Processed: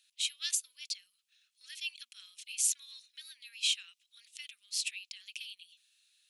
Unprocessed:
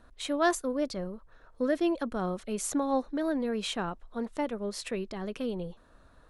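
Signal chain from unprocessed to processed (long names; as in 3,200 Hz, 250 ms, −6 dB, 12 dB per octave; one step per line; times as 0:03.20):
elliptic high-pass filter 2,600 Hz, stop band 70 dB
level +6.5 dB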